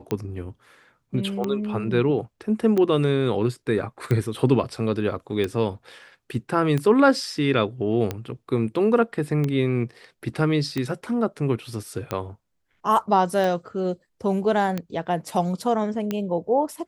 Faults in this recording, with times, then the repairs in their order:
tick 45 rpm -13 dBFS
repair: de-click

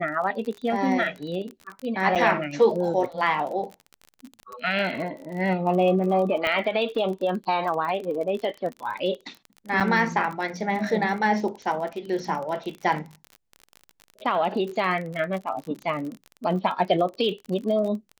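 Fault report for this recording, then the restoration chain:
crackle 34 per s -31 dBFS
2.15–2.16 s: dropout 6.6 ms
6.47 s: pop -13 dBFS
9.80–9.81 s: dropout 7 ms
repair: de-click; interpolate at 2.15 s, 6.6 ms; interpolate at 9.80 s, 7 ms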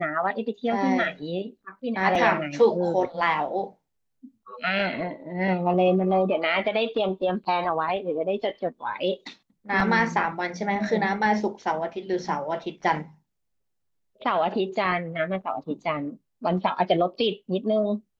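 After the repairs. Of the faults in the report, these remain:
nothing left

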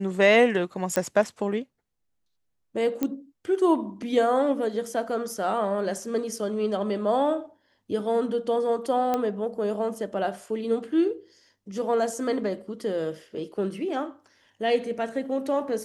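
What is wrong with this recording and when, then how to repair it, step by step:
0.96 s: pop -10 dBFS
3.03 s: pop -13 dBFS
9.14 s: pop -13 dBFS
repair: de-click

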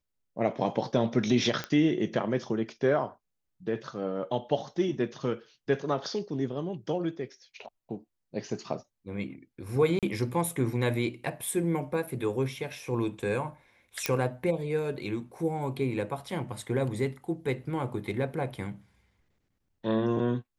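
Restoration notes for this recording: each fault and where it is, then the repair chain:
1.64 s: pop -17 dBFS
9.99–10.03 s: dropout 37 ms
14.06 s: pop -10 dBFS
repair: de-click; interpolate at 9.99 s, 37 ms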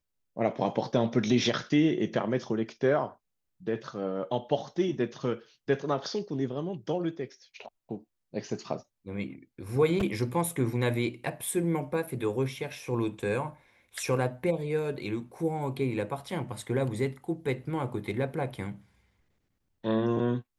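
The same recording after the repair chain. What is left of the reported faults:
1.64 s: pop

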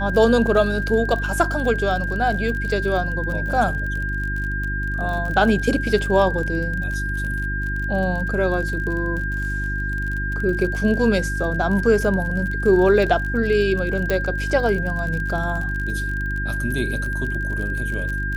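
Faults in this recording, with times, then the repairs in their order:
crackle 38 per s -27 dBFS
hum 50 Hz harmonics 7 -26 dBFS
whine 1.6 kHz -26 dBFS
14.10 s: pop -8 dBFS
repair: de-click; de-hum 50 Hz, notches 7; band-stop 1.6 kHz, Q 30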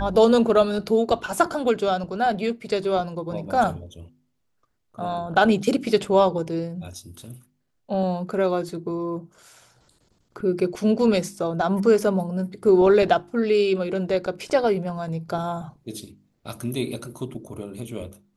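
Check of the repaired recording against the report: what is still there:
nothing left

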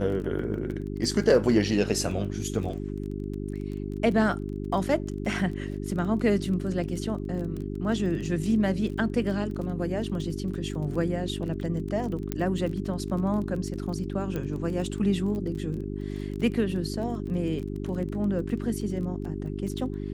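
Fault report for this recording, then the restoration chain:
crackle 23 per s -34 dBFS
hum 50 Hz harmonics 8 -33 dBFS
12.32 s: pop -14 dBFS
14.36 s: pop -19 dBFS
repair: de-click; de-hum 50 Hz, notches 8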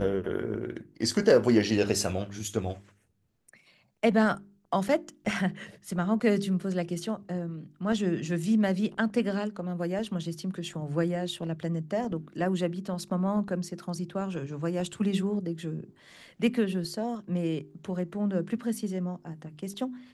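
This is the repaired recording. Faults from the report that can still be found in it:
nothing left

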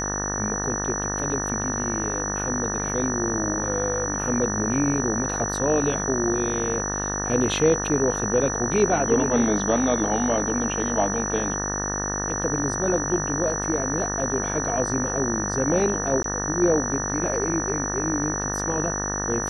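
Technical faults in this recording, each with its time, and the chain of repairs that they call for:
buzz 50 Hz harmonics 37 -30 dBFS
whine 5.9 kHz -28 dBFS
16.23–16.24 s: dropout 13 ms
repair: de-hum 50 Hz, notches 37; band-stop 5.9 kHz, Q 30; interpolate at 16.23 s, 13 ms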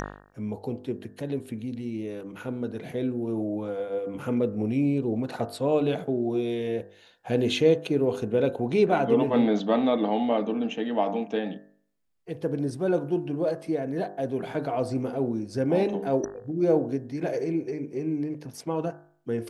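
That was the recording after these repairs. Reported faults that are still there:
nothing left

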